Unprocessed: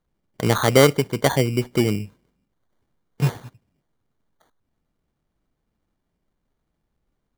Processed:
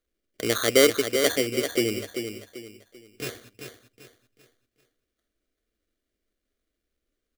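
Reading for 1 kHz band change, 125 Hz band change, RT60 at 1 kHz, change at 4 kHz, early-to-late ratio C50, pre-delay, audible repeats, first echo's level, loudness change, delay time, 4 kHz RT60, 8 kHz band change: -10.0 dB, -17.5 dB, none, +1.0 dB, none, none, 3, -7.5 dB, -4.0 dB, 0.39 s, none, +1.5 dB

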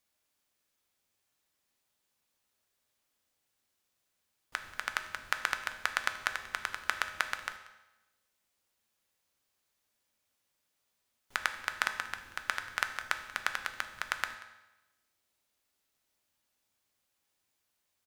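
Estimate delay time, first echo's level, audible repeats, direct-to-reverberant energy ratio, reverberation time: 0.185 s, -20.0 dB, 1, 6.5 dB, 1.0 s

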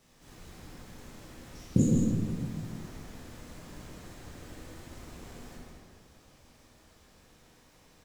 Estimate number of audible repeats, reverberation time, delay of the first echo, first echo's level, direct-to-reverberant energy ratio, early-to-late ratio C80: 1, 1.9 s, 0.161 s, -3.5 dB, -6.0 dB, -1.0 dB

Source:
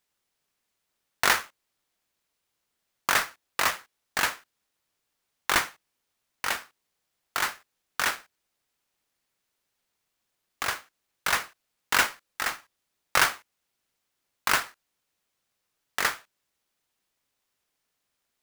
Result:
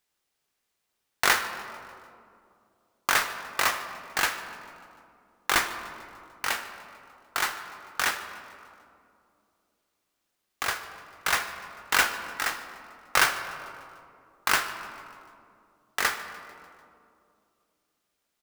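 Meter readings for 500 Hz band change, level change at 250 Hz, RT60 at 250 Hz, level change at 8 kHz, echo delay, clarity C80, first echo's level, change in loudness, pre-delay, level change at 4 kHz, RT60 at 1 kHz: +0.5 dB, 0.0 dB, 3.1 s, +0.5 dB, 0.148 s, 10.0 dB, -20.0 dB, 0.0 dB, 3 ms, +0.5 dB, 2.3 s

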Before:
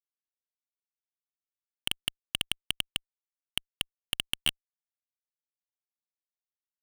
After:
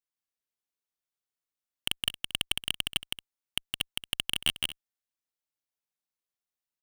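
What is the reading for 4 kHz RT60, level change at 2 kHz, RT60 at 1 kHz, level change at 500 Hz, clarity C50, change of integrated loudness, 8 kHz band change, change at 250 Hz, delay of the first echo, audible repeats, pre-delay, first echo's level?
none, +2.0 dB, none, +2.0 dB, none, +1.5 dB, +2.0 dB, +1.5 dB, 0.164 s, 2, none, -3.0 dB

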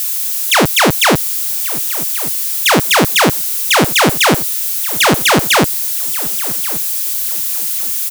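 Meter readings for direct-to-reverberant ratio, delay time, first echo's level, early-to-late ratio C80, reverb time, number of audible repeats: none, 1.131 s, -17.5 dB, none, none, 2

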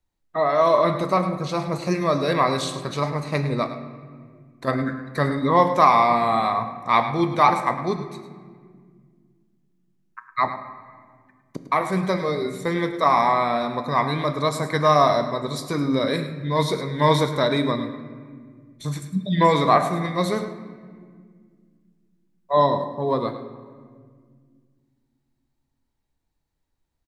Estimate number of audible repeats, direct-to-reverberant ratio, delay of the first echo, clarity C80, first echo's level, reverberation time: 1, 7.5 dB, 0.105 s, 9.0 dB, -12.5 dB, 1.9 s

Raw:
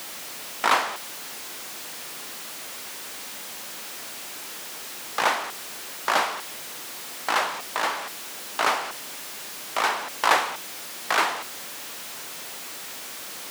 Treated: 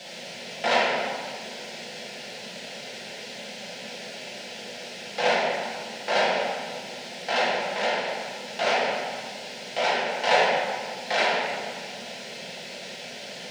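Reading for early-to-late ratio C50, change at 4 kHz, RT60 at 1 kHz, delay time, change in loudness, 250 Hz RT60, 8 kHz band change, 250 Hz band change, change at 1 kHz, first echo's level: -1.0 dB, +1.5 dB, 1.9 s, none, +0.5 dB, 2.9 s, -7.5 dB, +4.5 dB, -1.0 dB, none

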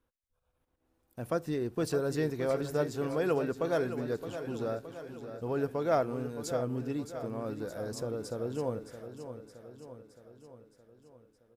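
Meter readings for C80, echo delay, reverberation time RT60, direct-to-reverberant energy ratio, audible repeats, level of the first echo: none, 0.618 s, none, none, 6, -10.5 dB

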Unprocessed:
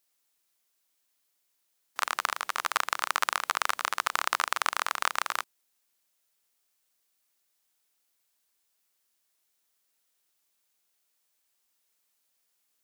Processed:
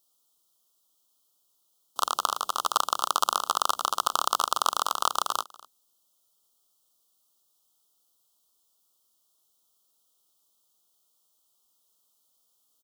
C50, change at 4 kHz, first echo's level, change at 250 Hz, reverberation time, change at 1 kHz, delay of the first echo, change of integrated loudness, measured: none, +4.0 dB, -22.0 dB, +5.0 dB, none, +4.0 dB, 0.24 s, +2.5 dB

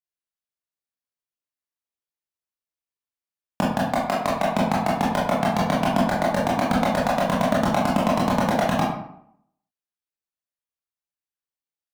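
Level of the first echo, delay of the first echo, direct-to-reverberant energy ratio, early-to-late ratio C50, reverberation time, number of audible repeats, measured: none, none, -6.0 dB, 2.0 dB, 0.70 s, none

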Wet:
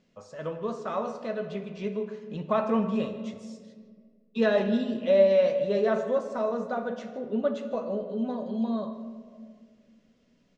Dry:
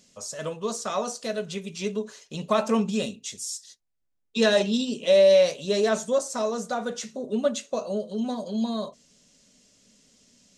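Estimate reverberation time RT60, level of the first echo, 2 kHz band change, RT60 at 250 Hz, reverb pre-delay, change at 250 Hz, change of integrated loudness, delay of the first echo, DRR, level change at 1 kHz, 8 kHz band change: 1.8 s, -18.5 dB, -4.5 dB, 2.5 s, 6 ms, -1.0 dB, -2.5 dB, 0.155 s, 6.5 dB, -2.0 dB, under -20 dB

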